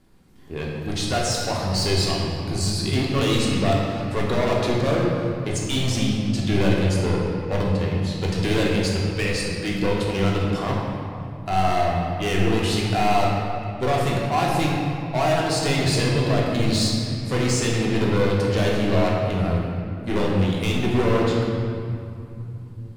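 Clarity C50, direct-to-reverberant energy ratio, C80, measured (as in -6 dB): 0.0 dB, -4.0 dB, 1.0 dB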